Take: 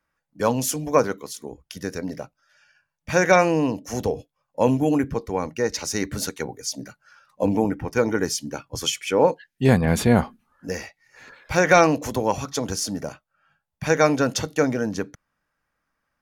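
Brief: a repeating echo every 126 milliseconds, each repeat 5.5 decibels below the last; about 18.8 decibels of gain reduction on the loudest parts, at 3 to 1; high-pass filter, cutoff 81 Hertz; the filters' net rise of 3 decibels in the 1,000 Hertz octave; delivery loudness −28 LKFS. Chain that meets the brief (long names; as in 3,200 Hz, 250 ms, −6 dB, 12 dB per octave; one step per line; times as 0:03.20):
high-pass filter 81 Hz
parametric band 1,000 Hz +4 dB
downward compressor 3 to 1, threshold −36 dBFS
repeating echo 126 ms, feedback 53%, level −5.5 dB
level +7.5 dB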